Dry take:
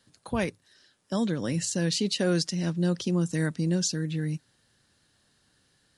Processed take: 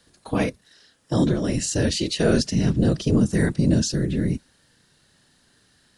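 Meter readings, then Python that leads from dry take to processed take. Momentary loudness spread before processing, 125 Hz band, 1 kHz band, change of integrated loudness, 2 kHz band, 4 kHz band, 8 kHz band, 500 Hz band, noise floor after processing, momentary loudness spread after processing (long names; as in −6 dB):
8 LU, +6.5 dB, +4.5 dB, +6.0 dB, +4.0 dB, +3.0 dB, +3.0 dB, +6.0 dB, −62 dBFS, 7 LU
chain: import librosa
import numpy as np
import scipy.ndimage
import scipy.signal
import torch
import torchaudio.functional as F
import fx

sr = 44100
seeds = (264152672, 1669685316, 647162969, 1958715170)

y = fx.whisperise(x, sr, seeds[0])
y = fx.hpss(y, sr, part='harmonic', gain_db=9)
y = y * 10.0 ** (1.0 / 20.0)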